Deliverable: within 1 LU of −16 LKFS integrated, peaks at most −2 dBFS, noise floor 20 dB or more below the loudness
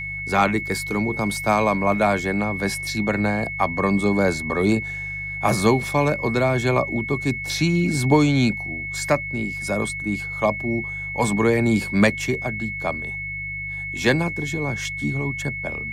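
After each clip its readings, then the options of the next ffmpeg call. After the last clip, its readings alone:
mains hum 50 Hz; hum harmonics up to 150 Hz; level of the hum −35 dBFS; interfering tone 2,200 Hz; level of the tone −28 dBFS; integrated loudness −22.0 LKFS; sample peak −5.0 dBFS; target loudness −16.0 LKFS
→ -af "bandreject=frequency=50:width_type=h:width=4,bandreject=frequency=100:width_type=h:width=4,bandreject=frequency=150:width_type=h:width=4"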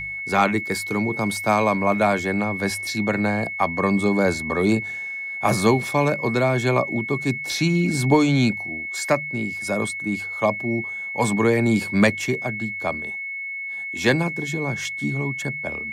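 mains hum none found; interfering tone 2,200 Hz; level of the tone −28 dBFS
→ -af "bandreject=frequency=2200:width=30"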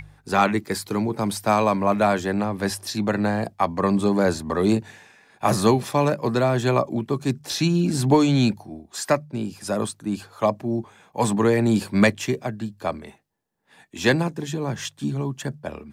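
interfering tone none found; integrated loudness −23.0 LKFS; sample peak −5.0 dBFS; target loudness −16.0 LKFS
→ -af "volume=7dB,alimiter=limit=-2dB:level=0:latency=1"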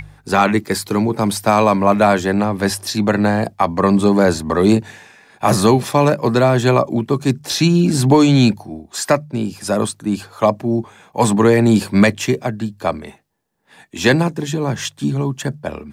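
integrated loudness −16.5 LKFS; sample peak −2.0 dBFS; background noise floor −53 dBFS

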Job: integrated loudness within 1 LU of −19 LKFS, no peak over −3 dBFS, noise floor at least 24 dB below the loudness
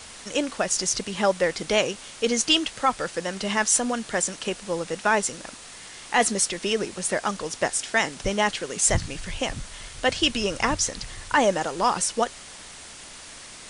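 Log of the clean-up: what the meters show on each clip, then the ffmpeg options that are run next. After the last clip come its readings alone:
background noise floor −43 dBFS; target noise floor −49 dBFS; integrated loudness −24.5 LKFS; sample peak −8.5 dBFS; target loudness −19.0 LKFS
→ -af "afftdn=noise_reduction=6:noise_floor=-43"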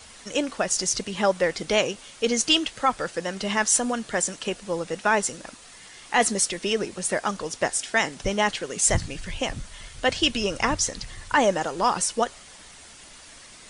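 background noise floor −47 dBFS; target noise floor −49 dBFS
→ -af "afftdn=noise_reduction=6:noise_floor=-47"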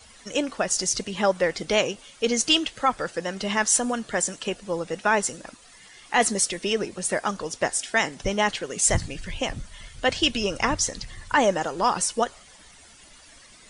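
background noise floor −51 dBFS; integrated loudness −24.5 LKFS; sample peak −9.0 dBFS; target loudness −19.0 LKFS
→ -af "volume=5.5dB"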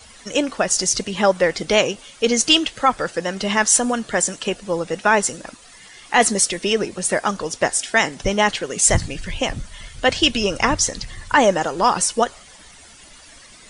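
integrated loudness −19.0 LKFS; sample peak −3.5 dBFS; background noise floor −45 dBFS

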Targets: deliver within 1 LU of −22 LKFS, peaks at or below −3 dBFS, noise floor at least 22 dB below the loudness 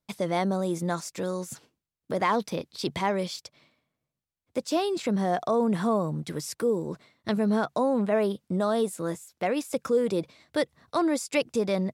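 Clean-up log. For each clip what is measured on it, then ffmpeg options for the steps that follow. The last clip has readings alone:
integrated loudness −28.0 LKFS; sample peak −12.5 dBFS; target loudness −22.0 LKFS
→ -af "volume=6dB"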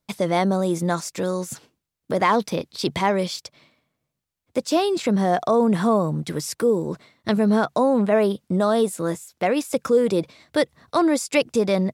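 integrated loudness −22.0 LKFS; sample peak −6.5 dBFS; background noise floor −81 dBFS

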